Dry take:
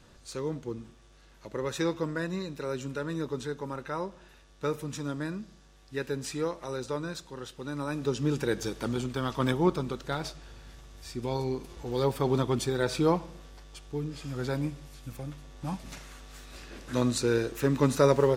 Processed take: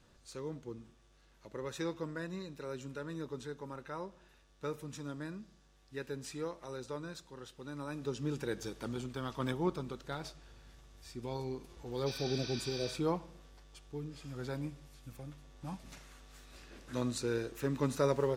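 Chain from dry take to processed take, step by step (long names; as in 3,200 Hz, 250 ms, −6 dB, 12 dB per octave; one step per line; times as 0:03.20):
healed spectral selection 0:12.09–0:12.89, 820–6,200 Hz after
level −8.5 dB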